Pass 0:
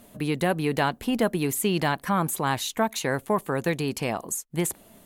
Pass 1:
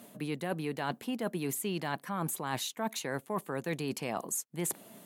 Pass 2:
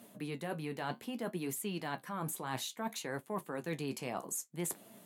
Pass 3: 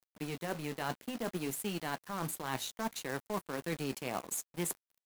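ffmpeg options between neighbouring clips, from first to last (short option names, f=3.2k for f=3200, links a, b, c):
-af "highpass=f=130:w=0.5412,highpass=f=130:w=1.3066,areverse,acompressor=threshold=-31dB:ratio=6,areverse"
-af "flanger=delay=8.6:depth=7.6:regen=-53:speed=0.61:shape=triangular"
-af "acrusher=bits=3:mode=log:mix=0:aa=0.000001,aeval=exprs='sgn(val(0))*max(abs(val(0))-0.00398,0)':c=same,volume=3dB"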